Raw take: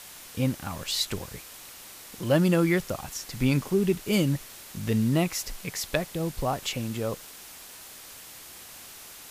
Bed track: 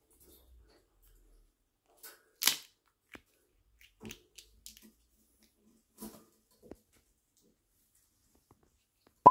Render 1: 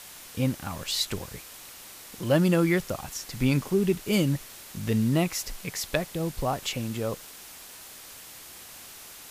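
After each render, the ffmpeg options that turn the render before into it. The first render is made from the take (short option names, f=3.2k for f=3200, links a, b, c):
-af anull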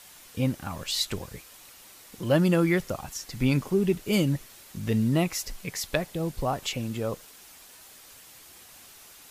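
-af "afftdn=nr=6:nf=-46"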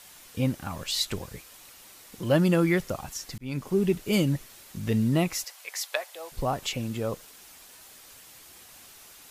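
-filter_complex "[0:a]asettb=1/sr,asplit=3[a][b][c];[a]atrim=end=5.444[d];[b]atrim=start=5.44:end=6.32,asetpts=PTS-STARTPTS,afade=t=in:d=0.004:c=qsin,afade=t=out:st=0.876:d=0.004:c=qsin,highpass=f=610:w=0.5412,highpass=f=610:w=1.3066[e];[c]atrim=start=6.316[f];[d][e]acrossfade=d=0.004:c1=hsin:c2=qsin[g];[g][f]acrossfade=d=0.004:c1=qsin:c2=hsin,asplit=2[h][i];[h]atrim=end=3.38,asetpts=PTS-STARTPTS,afade=t=out:st=3.376:d=0.004:c=hsin[j];[i]atrim=start=3.38,asetpts=PTS-STARTPTS,afade=t=in:d=0.4[k];[j][k]concat=n=2:v=0:a=1"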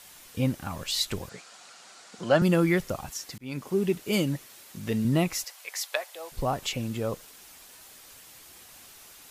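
-filter_complex "[0:a]asettb=1/sr,asplit=3[a][b][c];[a]atrim=end=1.294[d];[b]atrim=start=1.29:end=2.42,asetpts=PTS-STARTPTS,afade=t=in:d=0.004:c=qsin,afade=t=out:st=1.126:d=0.004:c=qsin,highpass=f=140:w=0.5412,highpass=f=140:w=1.3066,equalizer=f=140:t=q:w=4:g=-5,equalizer=f=300:t=q:w=4:g=-6,equalizer=f=720:t=q:w=4:g=8,equalizer=f=1.4k:t=q:w=4:g=9,equalizer=f=4.5k:t=q:w=4:g=4,equalizer=f=7.1k:t=q:w=4:g=3,lowpass=f=8.2k:w=0.5412,lowpass=f=8.2k:w=1.3066[e];[c]atrim=start=2.416[f];[d][e]acrossfade=d=0.004:c1=hsin:c2=qsin[g];[g][f]acrossfade=d=0.004:c1=qsin:c2=hsin,asettb=1/sr,asplit=3[h][i][j];[h]atrim=end=3.104[k];[i]atrim=start=3.1:end=5.05,asetpts=PTS-STARTPTS,afade=t=in:d=0.004:c=qsin,afade=t=out:st=1.946:d=0.004:c=qsin,highpass=f=190:p=1[l];[j]atrim=start=5.046[m];[k][l]acrossfade=d=0.004:c1=hsin:c2=qsin[n];[n][m]acrossfade=d=0.004:c1=qsin:c2=hsin"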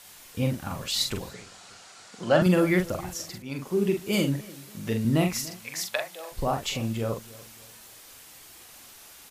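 -filter_complex "[0:a]asplit=2[a][b];[b]adelay=44,volume=-5dB[c];[a][c]amix=inputs=2:normalize=0,asplit=2[d][e];[e]adelay=291,lowpass=f=2k:p=1,volume=-20dB,asplit=2[f][g];[g]adelay=291,lowpass=f=2k:p=1,volume=0.41,asplit=2[h][i];[i]adelay=291,lowpass=f=2k:p=1,volume=0.41[j];[d][f][h][j]amix=inputs=4:normalize=0"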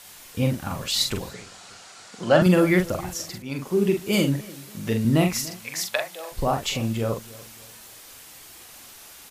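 -af "volume=3.5dB"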